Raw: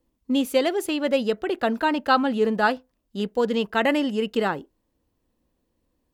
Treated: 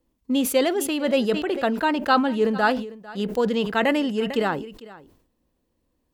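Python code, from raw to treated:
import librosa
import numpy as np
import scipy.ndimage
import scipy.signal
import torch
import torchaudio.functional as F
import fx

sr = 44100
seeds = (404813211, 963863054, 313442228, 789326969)

y = x + 10.0 ** (-19.5 / 20.0) * np.pad(x, (int(450 * sr / 1000.0), 0))[:len(x)]
y = fx.sustainer(y, sr, db_per_s=82.0)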